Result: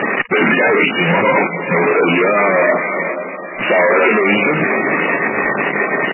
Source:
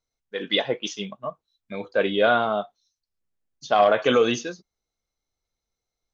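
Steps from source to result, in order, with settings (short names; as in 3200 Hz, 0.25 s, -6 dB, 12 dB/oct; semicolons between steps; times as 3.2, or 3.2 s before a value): infinite clipping; HPF 220 Hz 24 dB/oct; bell 2500 Hz +10.5 dB 0.78 oct; notch 4200 Hz, Q 9.7; pitch shift -2.5 st; added harmonics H 6 -39 dB, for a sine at -12.5 dBFS; air absorption 400 m; diffused feedback echo 0.484 s, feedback 47%, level -11.5 dB; maximiser +19 dB; gain -3 dB; MP3 8 kbps 11025 Hz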